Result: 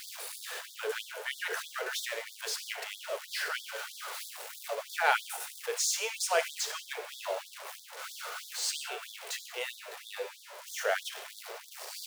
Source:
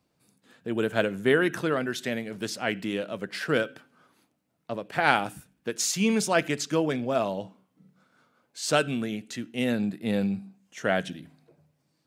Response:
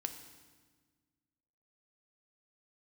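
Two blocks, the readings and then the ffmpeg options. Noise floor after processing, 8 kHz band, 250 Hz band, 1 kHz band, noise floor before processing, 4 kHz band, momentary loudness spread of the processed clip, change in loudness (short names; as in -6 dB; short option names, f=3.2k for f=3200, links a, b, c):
-51 dBFS, 0.0 dB, under -35 dB, -5.0 dB, -74 dBFS, -1.0 dB, 13 LU, -7.5 dB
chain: -filter_complex "[0:a]aeval=exprs='val(0)+0.5*0.0376*sgn(val(0))':c=same[a];[1:a]atrim=start_sample=2205,afade=t=out:st=0.25:d=0.01,atrim=end_sample=11466[b];[a][b]afir=irnorm=-1:irlink=0,afftfilt=real='re*gte(b*sr/1024,350*pow(3400/350,0.5+0.5*sin(2*PI*3.1*pts/sr)))':imag='im*gte(b*sr/1024,350*pow(3400/350,0.5+0.5*sin(2*PI*3.1*pts/sr)))':win_size=1024:overlap=0.75,volume=-3.5dB"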